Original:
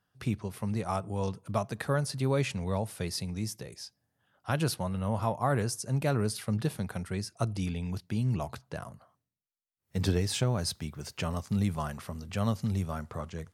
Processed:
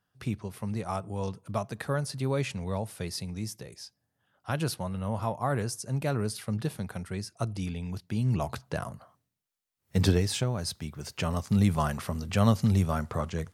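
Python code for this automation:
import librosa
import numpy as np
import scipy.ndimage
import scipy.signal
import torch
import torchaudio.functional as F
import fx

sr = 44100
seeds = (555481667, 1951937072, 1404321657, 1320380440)

y = fx.gain(x, sr, db=fx.line((8.0, -1.0), (8.62, 6.0), (9.98, 6.0), (10.53, -2.0), (11.83, 6.5)))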